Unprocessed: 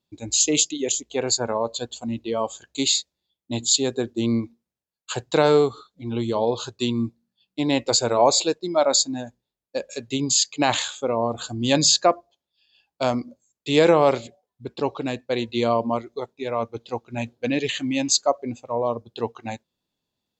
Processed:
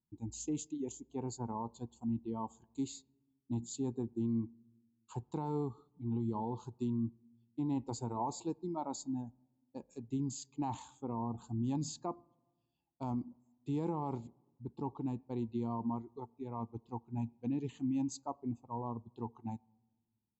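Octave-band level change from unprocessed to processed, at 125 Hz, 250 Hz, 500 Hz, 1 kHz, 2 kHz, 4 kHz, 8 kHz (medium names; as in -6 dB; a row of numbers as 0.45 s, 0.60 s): -8.0 dB, -10.5 dB, -22.5 dB, -16.0 dB, under -30 dB, -32.0 dB, -25.5 dB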